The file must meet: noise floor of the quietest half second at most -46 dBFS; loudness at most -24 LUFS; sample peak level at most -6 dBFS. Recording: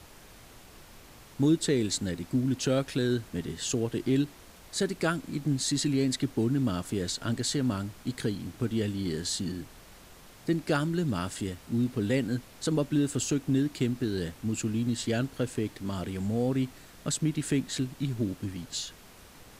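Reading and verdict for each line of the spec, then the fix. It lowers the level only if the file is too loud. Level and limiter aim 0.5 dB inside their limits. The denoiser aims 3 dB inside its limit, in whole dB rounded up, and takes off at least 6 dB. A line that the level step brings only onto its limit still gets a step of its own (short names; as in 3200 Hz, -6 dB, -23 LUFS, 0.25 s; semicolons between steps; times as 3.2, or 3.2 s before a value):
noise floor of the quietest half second -52 dBFS: OK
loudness -30.0 LUFS: OK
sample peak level -15.0 dBFS: OK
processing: none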